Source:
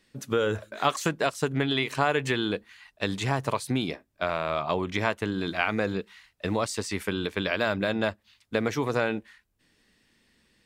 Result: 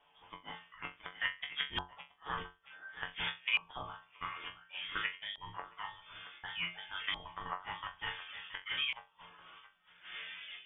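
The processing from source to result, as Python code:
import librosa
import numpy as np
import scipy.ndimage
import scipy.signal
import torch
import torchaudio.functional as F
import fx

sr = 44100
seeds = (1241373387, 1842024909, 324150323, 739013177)

p1 = fx.dmg_wind(x, sr, seeds[0], corner_hz=640.0, level_db=-33.0)
p2 = fx.level_steps(p1, sr, step_db=13)
p3 = p1 + F.gain(torch.from_numpy(p2), -1.5).numpy()
p4 = fx.resample_bad(p3, sr, factor=8, down='filtered', up='hold', at=(4.36, 5.38))
p5 = p4 + fx.room_flutter(p4, sr, wall_m=6.7, rt60_s=0.49, dry=0)
p6 = fx.gate_flip(p5, sr, shuts_db=-8.0, range_db=-30)
p7 = fx.dereverb_blind(p6, sr, rt60_s=1.1)
p8 = fx.resonator_bank(p7, sr, root=42, chord='fifth', decay_s=0.24)
p9 = p8 + 10.0 ** (-14.5 / 20.0) * np.pad(p8, (int(673 * sr / 1000.0), 0))[:len(p8)]
p10 = fx.freq_invert(p9, sr, carrier_hz=3500)
p11 = fx.filter_lfo_lowpass(p10, sr, shape='saw_up', hz=0.56, low_hz=880.0, high_hz=2300.0, q=2.9)
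y = F.gain(torch.from_numpy(p11), -3.5).numpy()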